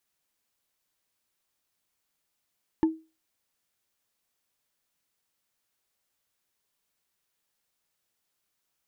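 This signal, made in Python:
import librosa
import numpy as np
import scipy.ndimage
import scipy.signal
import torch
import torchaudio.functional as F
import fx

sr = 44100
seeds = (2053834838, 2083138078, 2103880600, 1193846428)

y = fx.strike_wood(sr, length_s=0.45, level_db=-15.5, body='bar', hz=320.0, decay_s=0.29, tilt_db=11.0, modes=5)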